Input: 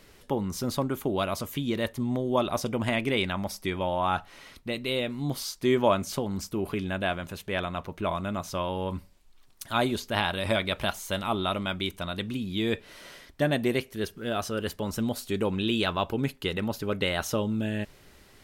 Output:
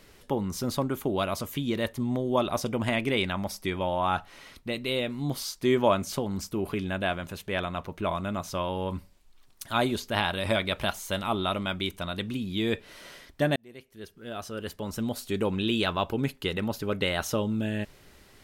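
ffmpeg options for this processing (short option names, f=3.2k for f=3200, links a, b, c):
-filter_complex "[0:a]asplit=2[a][b];[a]atrim=end=13.56,asetpts=PTS-STARTPTS,afade=t=out:st=13.556:d=0.004:c=hsin[c];[b]atrim=start=13.56,asetpts=PTS-STARTPTS,afade=t=in:d=1.84[d];[c][d]concat=n=2:v=0:a=1"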